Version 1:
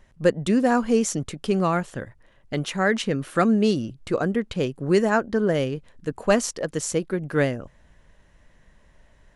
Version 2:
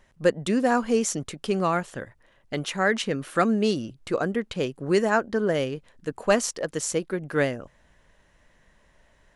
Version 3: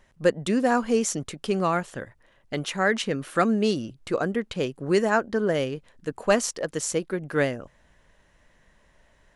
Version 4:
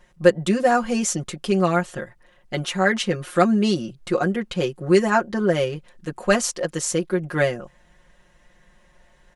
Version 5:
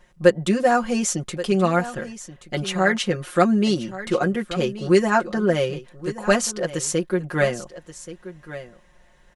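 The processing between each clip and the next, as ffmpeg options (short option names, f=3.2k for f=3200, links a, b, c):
-af "lowshelf=f=250:g=-7"
-af anull
-af "aecho=1:1:5.6:0.96,volume=1dB"
-af "aecho=1:1:1129:0.188"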